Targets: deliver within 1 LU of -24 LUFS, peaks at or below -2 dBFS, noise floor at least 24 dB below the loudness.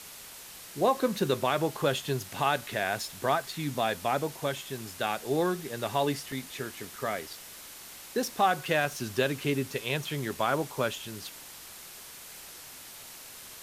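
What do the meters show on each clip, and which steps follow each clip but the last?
dropouts 1; longest dropout 1.9 ms; noise floor -47 dBFS; noise floor target -55 dBFS; loudness -30.5 LUFS; peak -12.5 dBFS; loudness target -24.0 LUFS
-> interpolate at 6.32, 1.9 ms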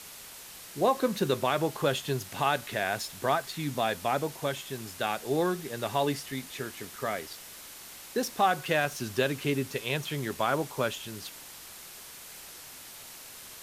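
dropouts 0; noise floor -47 dBFS; noise floor target -55 dBFS
-> denoiser 8 dB, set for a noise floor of -47 dBFS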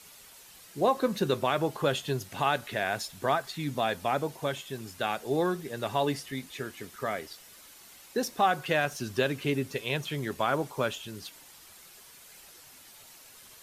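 noise floor -53 dBFS; noise floor target -55 dBFS
-> denoiser 6 dB, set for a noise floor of -53 dBFS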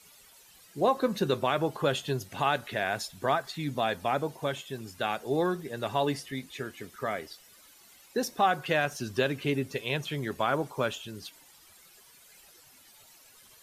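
noise floor -57 dBFS; loudness -30.5 LUFS; peak -12.5 dBFS; loudness target -24.0 LUFS
-> gain +6.5 dB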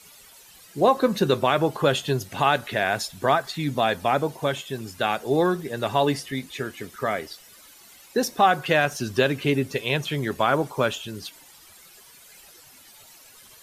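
loudness -24.0 LUFS; peak -6.0 dBFS; noise floor -50 dBFS

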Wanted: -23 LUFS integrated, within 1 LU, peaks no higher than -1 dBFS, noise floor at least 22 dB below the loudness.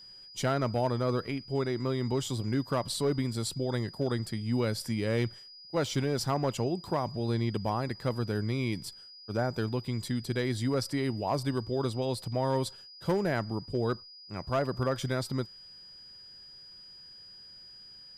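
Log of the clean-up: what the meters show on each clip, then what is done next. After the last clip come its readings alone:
clipped 0.4%; flat tops at -21.0 dBFS; steady tone 4900 Hz; tone level -48 dBFS; loudness -31.5 LUFS; peak -21.0 dBFS; loudness target -23.0 LUFS
-> clip repair -21 dBFS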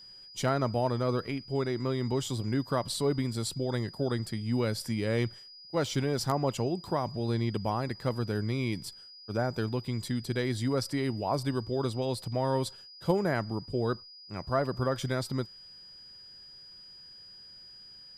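clipped 0.0%; steady tone 4900 Hz; tone level -48 dBFS
-> notch 4900 Hz, Q 30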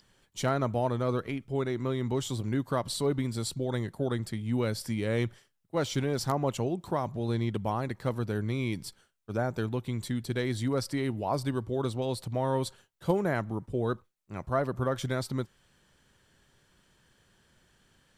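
steady tone none; loudness -31.5 LUFS; peak -12.5 dBFS; loudness target -23.0 LUFS
-> gain +8.5 dB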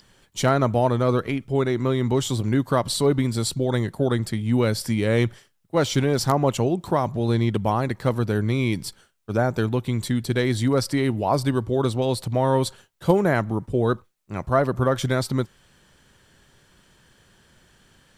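loudness -23.0 LUFS; peak -4.0 dBFS; noise floor -61 dBFS

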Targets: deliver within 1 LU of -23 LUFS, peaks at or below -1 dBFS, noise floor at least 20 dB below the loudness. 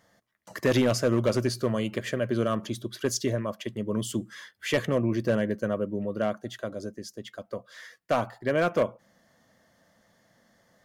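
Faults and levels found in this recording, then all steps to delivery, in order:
clipped 0.6%; flat tops at -16.5 dBFS; loudness -28.5 LUFS; peak -16.5 dBFS; loudness target -23.0 LUFS
-> clip repair -16.5 dBFS; gain +5.5 dB

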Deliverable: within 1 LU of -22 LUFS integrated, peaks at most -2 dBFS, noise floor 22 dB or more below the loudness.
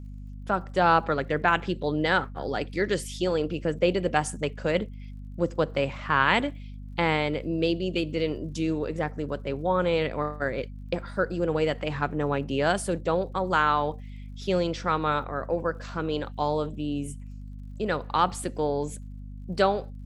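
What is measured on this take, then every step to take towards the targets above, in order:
ticks 48/s; hum 50 Hz; harmonics up to 250 Hz; hum level -37 dBFS; loudness -27.0 LUFS; peak -6.0 dBFS; loudness target -22.0 LUFS
-> de-click; de-hum 50 Hz, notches 5; gain +5 dB; limiter -2 dBFS

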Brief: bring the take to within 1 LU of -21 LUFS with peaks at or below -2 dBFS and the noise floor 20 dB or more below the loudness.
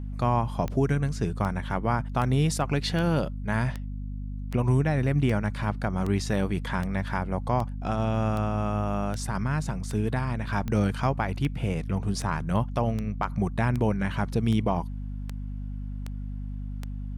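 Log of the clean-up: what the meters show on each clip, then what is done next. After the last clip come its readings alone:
clicks 22; hum 50 Hz; harmonics up to 250 Hz; hum level -31 dBFS; loudness -28.0 LUFS; peak -13.0 dBFS; loudness target -21.0 LUFS
-> de-click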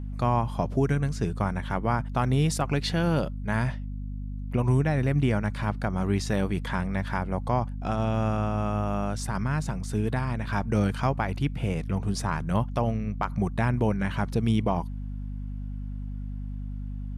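clicks 0; hum 50 Hz; harmonics up to 250 Hz; hum level -31 dBFS
-> de-hum 50 Hz, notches 5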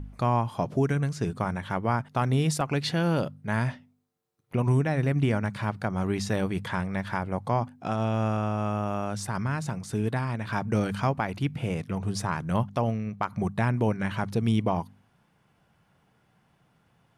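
hum none; loudness -28.5 LUFS; peak -13.5 dBFS; loudness target -21.0 LUFS
-> gain +7.5 dB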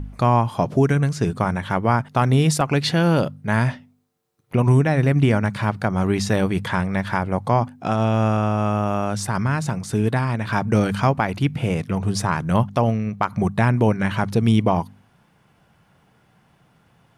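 loudness -21.0 LUFS; peak -6.0 dBFS; noise floor -60 dBFS

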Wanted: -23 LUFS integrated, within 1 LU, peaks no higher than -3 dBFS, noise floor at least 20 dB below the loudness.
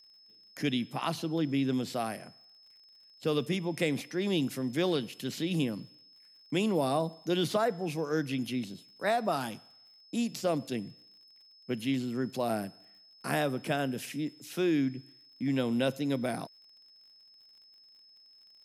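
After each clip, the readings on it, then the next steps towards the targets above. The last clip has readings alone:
ticks 45/s; steady tone 5200 Hz; tone level -56 dBFS; loudness -32.0 LUFS; peak -14.0 dBFS; loudness target -23.0 LUFS
-> de-click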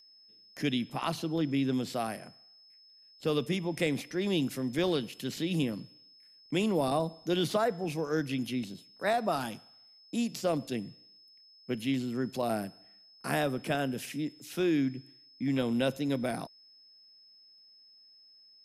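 ticks 0.16/s; steady tone 5200 Hz; tone level -56 dBFS
-> notch 5200 Hz, Q 30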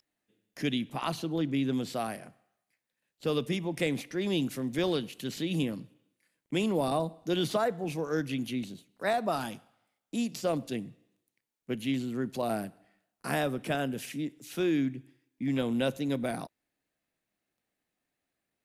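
steady tone none; loudness -32.0 LUFS; peak -14.0 dBFS; loudness target -23.0 LUFS
-> gain +9 dB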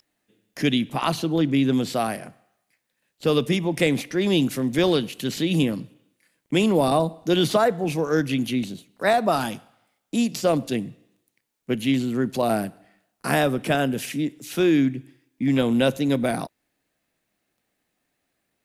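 loudness -23.0 LUFS; peak -5.0 dBFS; noise floor -77 dBFS

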